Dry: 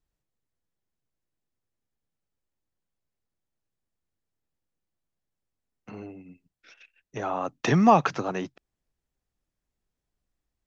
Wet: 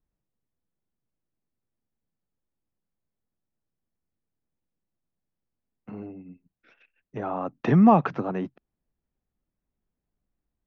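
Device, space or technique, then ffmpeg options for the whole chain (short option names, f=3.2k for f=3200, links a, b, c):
phone in a pocket: -af "lowpass=3.3k,equalizer=f=210:t=o:w=0.91:g=5,highshelf=f=2.1k:g=-10.5"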